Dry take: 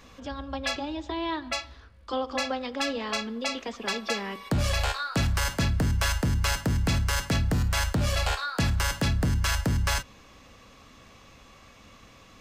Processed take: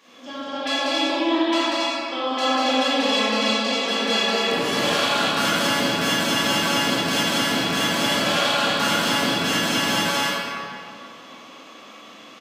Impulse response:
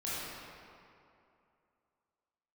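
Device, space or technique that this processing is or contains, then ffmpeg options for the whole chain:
stadium PA: -filter_complex "[0:a]highpass=frequency=220:width=0.5412,highpass=frequency=220:width=1.3066,equalizer=frequency=3200:width_type=o:width=0.29:gain=7,aecho=1:1:189.5|277:0.794|0.708[link_01];[1:a]atrim=start_sample=2205[link_02];[link_01][link_02]afir=irnorm=-1:irlink=0,volume=1.5dB"

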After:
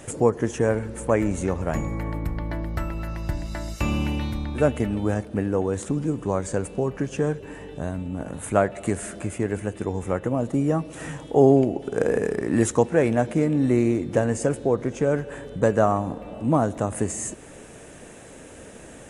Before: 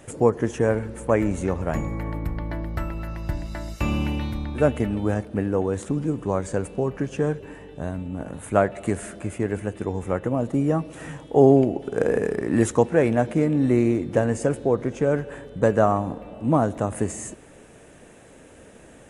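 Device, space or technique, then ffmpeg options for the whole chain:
parallel compression: -filter_complex "[0:a]asplit=2[link_01][link_02];[link_02]acompressor=threshold=-38dB:ratio=6,volume=-0.5dB[link_03];[link_01][link_03]amix=inputs=2:normalize=0,equalizer=frequency=7300:width=0.82:gain=4,volume=-1.5dB"

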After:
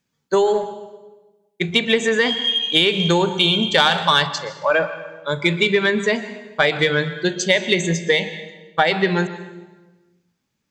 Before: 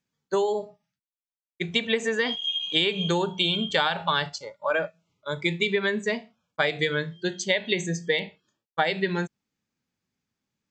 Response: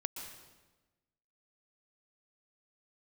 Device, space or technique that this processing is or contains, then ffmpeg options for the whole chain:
saturated reverb return: -filter_complex "[0:a]asplit=2[link_01][link_02];[1:a]atrim=start_sample=2205[link_03];[link_02][link_03]afir=irnorm=-1:irlink=0,asoftclip=type=tanh:threshold=-17.5dB,volume=-2dB[link_04];[link_01][link_04]amix=inputs=2:normalize=0,asettb=1/sr,asplit=3[link_05][link_06][link_07];[link_05]atrim=end=3.784[link_08];[link_06]atrim=start=3.78:end=4.27,asetpts=PTS-STARTPTS,afade=type=in:duration=0.004:curve=qsin,afade=type=out:start_time=0.486:duration=0.004:curve=qsin,highshelf=frequency=5000:gain=11.5[link_09];[link_07]atrim=start=4.266[link_10];[link_08][link_09]acrossfade=duration=0.004:curve1=hsin:curve2=qsin[link_11];[link_11][link_10]acrossfade=duration=0.004:curve1=qsin:curve2=hsin,volume=3.5dB"

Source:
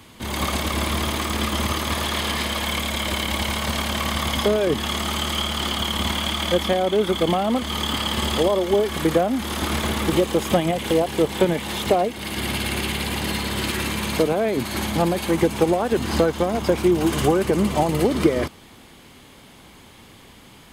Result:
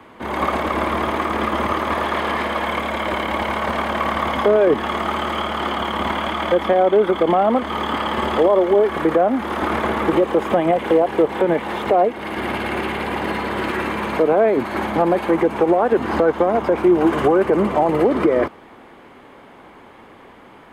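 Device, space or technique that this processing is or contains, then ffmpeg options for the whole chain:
DJ mixer with the lows and highs turned down: -filter_complex "[0:a]acrossover=split=280 2000:gain=0.2 1 0.0708[link_01][link_02][link_03];[link_01][link_02][link_03]amix=inputs=3:normalize=0,alimiter=limit=-14.5dB:level=0:latency=1:release=63,volume=8dB"

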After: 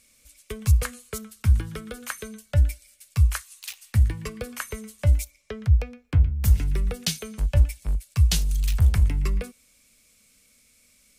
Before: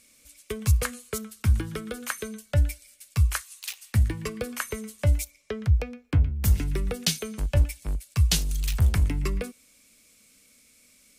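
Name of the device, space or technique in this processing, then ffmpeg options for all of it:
low shelf boost with a cut just above: -af "lowshelf=frequency=86:gain=7.5,equalizer=frequency=310:width_type=o:width=0.77:gain=-5,volume=-1.5dB"

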